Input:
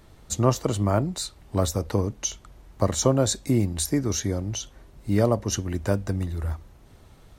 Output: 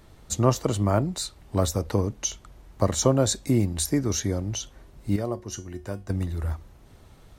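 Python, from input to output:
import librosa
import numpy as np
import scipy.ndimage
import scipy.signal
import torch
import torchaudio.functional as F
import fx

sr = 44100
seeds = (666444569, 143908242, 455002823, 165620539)

y = fx.comb_fb(x, sr, f0_hz=360.0, decay_s=0.27, harmonics='all', damping=0.0, mix_pct=70, at=(5.16, 6.1))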